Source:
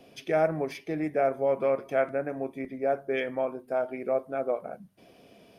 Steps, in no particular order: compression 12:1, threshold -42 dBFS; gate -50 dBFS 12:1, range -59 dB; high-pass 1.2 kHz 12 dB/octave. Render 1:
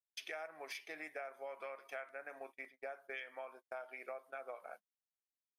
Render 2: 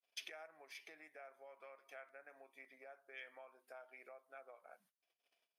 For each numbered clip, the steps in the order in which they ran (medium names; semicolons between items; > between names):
high-pass > gate > compression; gate > compression > high-pass